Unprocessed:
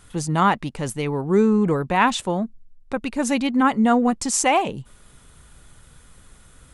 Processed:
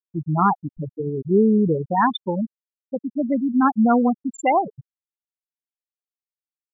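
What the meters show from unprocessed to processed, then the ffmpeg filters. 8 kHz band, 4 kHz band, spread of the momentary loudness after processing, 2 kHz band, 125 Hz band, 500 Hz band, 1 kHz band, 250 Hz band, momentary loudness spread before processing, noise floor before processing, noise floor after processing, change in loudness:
under -20 dB, -8.5 dB, 13 LU, -6.0 dB, 0.0 dB, 0.0 dB, 0.0 dB, +0.5 dB, 11 LU, -51 dBFS, under -85 dBFS, 0.0 dB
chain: -af "acontrast=23,afftfilt=real='re*gte(hypot(re,im),0.631)':imag='im*gte(hypot(re,im),0.631)':win_size=1024:overlap=0.75,volume=0.668"

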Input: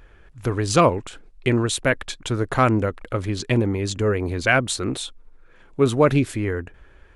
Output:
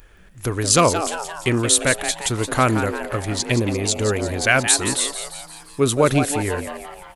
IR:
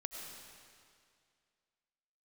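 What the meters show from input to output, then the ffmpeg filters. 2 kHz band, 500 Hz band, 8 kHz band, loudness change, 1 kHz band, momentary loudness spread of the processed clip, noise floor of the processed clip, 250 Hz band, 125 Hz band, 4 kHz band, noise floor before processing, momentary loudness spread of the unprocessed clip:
+2.5 dB, +0.5 dB, +12.5 dB, +2.5 dB, +2.0 dB, 13 LU, -47 dBFS, 0.0 dB, -0.5 dB, +6.5 dB, -51 dBFS, 12 LU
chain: -filter_complex "[0:a]aemphasis=mode=production:type=75fm,asplit=8[s0][s1][s2][s3][s4][s5][s6][s7];[s1]adelay=173,afreqshift=150,volume=0.335[s8];[s2]adelay=346,afreqshift=300,volume=0.188[s9];[s3]adelay=519,afreqshift=450,volume=0.105[s10];[s4]adelay=692,afreqshift=600,volume=0.0589[s11];[s5]adelay=865,afreqshift=750,volume=0.0331[s12];[s6]adelay=1038,afreqshift=900,volume=0.0184[s13];[s7]adelay=1211,afreqshift=1050,volume=0.0104[s14];[s0][s8][s9][s10][s11][s12][s13][s14]amix=inputs=8:normalize=0,asplit=2[s15][s16];[1:a]atrim=start_sample=2205,atrim=end_sample=4410[s17];[s16][s17]afir=irnorm=-1:irlink=0,volume=0.237[s18];[s15][s18]amix=inputs=2:normalize=0,volume=0.891"

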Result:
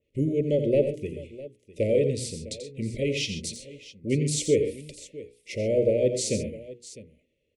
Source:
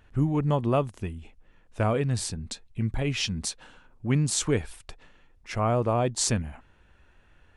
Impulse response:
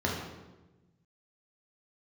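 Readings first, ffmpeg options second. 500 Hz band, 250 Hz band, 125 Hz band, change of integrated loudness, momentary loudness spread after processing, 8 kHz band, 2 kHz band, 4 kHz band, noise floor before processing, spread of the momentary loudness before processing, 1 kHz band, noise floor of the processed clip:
+6.0 dB, 0.0 dB, -4.0 dB, +1.0 dB, 19 LU, -2.5 dB, -2.5 dB, -1.5 dB, -60 dBFS, 13 LU, under -25 dB, -75 dBFS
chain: -af "highpass=f=170:p=1,bandreject=f=60:t=h:w=6,bandreject=f=120:t=h:w=6,bandreject=f=180:t=h:w=6,bandreject=f=240:t=h:w=6,bandreject=f=300:t=h:w=6,bandreject=f=360:t=h:w=6,bandreject=f=420:t=h:w=6,bandreject=f=480:t=h:w=6,agate=range=0.224:threshold=0.00126:ratio=16:detection=peak,equalizer=f=470:w=1.5:g=9.5,asoftclip=type=tanh:threshold=0.355,asuperstop=centerf=1100:order=20:qfactor=0.79,aecho=1:1:87|121|134|655:0.335|0.188|0.178|0.126,adynamicequalizer=threshold=0.00562:dfrequency=3000:dqfactor=0.7:tfrequency=3000:tqfactor=0.7:attack=5:release=100:ratio=0.375:range=2.5:mode=cutabove:tftype=highshelf"

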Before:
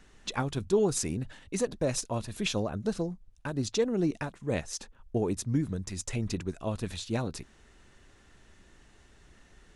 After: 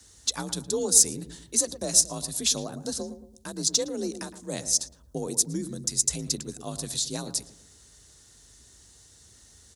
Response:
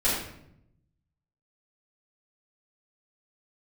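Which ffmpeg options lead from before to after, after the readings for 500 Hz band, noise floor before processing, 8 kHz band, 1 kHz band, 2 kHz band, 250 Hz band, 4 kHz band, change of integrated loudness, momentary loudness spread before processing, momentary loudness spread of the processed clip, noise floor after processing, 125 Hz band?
-3.0 dB, -59 dBFS, +15.5 dB, -2.5 dB, -4.0 dB, -3.0 dB, +10.0 dB, +6.5 dB, 9 LU, 15 LU, -55 dBFS, -6.0 dB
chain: -filter_complex "[0:a]afreqshift=42,asplit=2[s0][s1];[s1]adelay=113,lowpass=f=1000:p=1,volume=0.316,asplit=2[s2][s3];[s3]adelay=113,lowpass=f=1000:p=1,volume=0.45,asplit=2[s4][s5];[s5]adelay=113,lowpass=f=1000:p=1,volume=0.45,asplit=2[s6][s7];[s7]adelay=113,lowpass=f=1000:p=1,volume=0.45,asplit=2[s8][s9];[s9]adelay=113,lowpass=f=1000:p=1,volume=0.45[s10];[s0][s2][s4][s6][s8][s10]amix=inputs=6:normalize=0,aexciter=amount=6.2:drive=7.5:freq=3800,volume=0.631"

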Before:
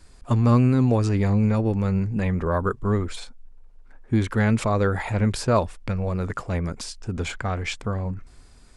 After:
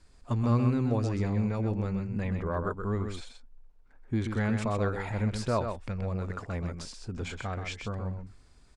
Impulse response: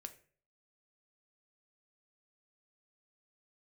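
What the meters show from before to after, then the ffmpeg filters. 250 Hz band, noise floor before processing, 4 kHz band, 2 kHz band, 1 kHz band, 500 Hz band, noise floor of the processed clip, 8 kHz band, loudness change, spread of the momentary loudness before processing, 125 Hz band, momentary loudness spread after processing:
-8.0 dB, -49 dBFS, -8.0 dB, -7.5 dB, -7.5 dB, -7.5 dB, -58 dBFS, -9.5 dB, -7.5 dB, 11 LU, -7.5 dB, 11 LU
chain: -filter_complex "[0:a]lowpass=8600,asplit=2[s0][s1];[s1]aecho=0:1:128:0.473[s2];[s0][s2]amix=inputs=2:normalize=0,volume=0.376"

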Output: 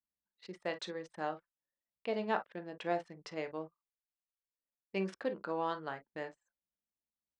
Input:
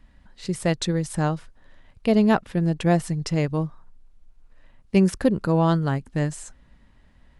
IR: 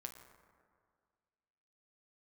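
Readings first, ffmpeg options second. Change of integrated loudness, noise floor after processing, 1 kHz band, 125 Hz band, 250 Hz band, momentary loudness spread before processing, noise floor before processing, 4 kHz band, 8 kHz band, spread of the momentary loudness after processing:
-16.5 dB, under -85 dBFS, -10.0 dB, -28.0 dB, -21.5 dB, 9 LU, -56 dBFS, -13.5 dB, under -20 dB, 10 LU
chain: -filter_complex "[0:a]highpass=470,lowpass=3900[s0];[1:a]atrim=start_sample=2205,atrim=end_sample=3087[s1];[s0][s1]afir=irnorm=-1:irlink=0,anlmdn=0.01,volume=0.531"

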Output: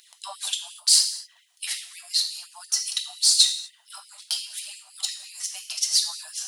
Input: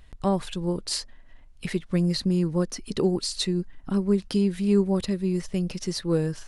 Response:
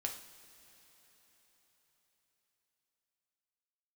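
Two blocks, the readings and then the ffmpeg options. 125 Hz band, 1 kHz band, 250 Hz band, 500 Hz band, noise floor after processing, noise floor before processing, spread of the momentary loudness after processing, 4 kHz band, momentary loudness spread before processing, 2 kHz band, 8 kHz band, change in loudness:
under -40 dB, -8.5 dB, under -40 dB, under -30 dB, -59 dBFS, -50 dBFS, 18 LU, +12.0 dB, 8 LU, +0.5 dB, +15.0 dB, +3.5 dB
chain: -filter_complex "[0:a]acompressor=threshold=0.0501:ratio=6,aexciter=amount=4.6:drive=5.4:freq=3000,aphaser=in_gain=1:out_gain=1:delay=4.6:decay=0.54:speed=0.82:type=triangular[s0];[1:a]atrim=start_sample=2205,afade=t=out:st=0.3:d=0.01,atrim=end_sample=13671[s1];[s0][s1]afir=irnorm=-1:irlink=0,afftfilt=real='re*gte(b*sr/1024,570*pow(2000/570,0.5+0.5*sin(2*PI*5.7*pts/sr)))':imag='im*gte(b*sr/1024,570*pow(2000/570,0.5+0.5*sin(2*PI*5.7*pts/sr)))':win_size=1024:overlap=0.75"

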